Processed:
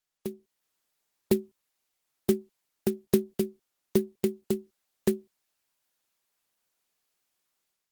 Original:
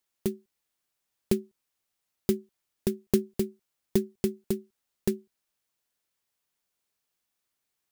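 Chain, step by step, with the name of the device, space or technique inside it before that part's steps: dynamic bell 5.9 kHz, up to -3 dB, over -57 dBFS, Q 2; video call (high-pass 180 Hz 6 dB/octave; level rider gain up to 10 dB; trim -5.5 dB; Opus 16 kbps 48 kHz)

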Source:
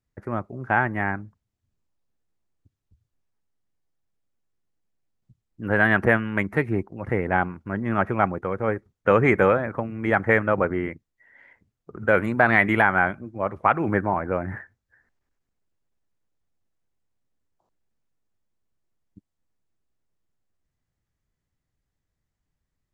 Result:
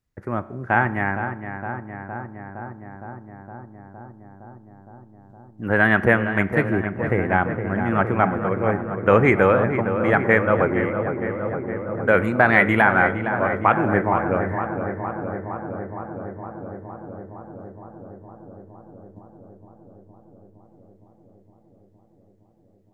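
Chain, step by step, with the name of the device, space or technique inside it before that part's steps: dub delay into a spring reverb (filtered feedback delay 463 ms, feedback 82%, low-pass 1.9 kHz, level -8 dB; spring tank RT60 1 s, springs 32 ms, chirp 30 ms, DRR 15.5 dB); trim +2 dB

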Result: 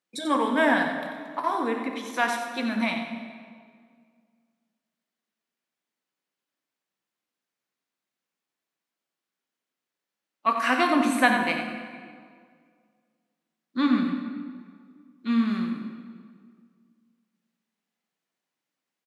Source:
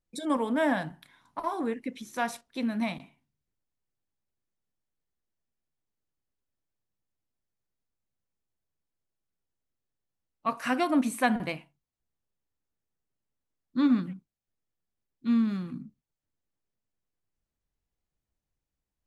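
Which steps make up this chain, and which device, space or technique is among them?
PA in a hall (high-pass 190 Hz 24 dB/octave; peaking EQ 2.2 kHz +8 dB 2.8 oct; delay 90 ms -9 dB; reverberation RT60 2.0 s, pre-delay 14 ms, DRR 4.5 dB)

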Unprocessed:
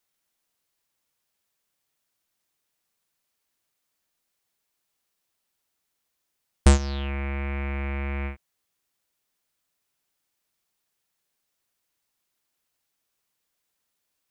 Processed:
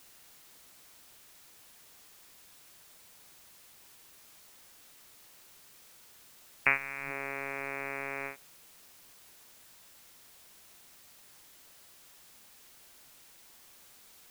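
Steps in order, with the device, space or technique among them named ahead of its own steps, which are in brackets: scrambled radio voice (band-pass 370–2600 Hz; frequency inversion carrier 2.7 kHz; white noise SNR 13 dB)

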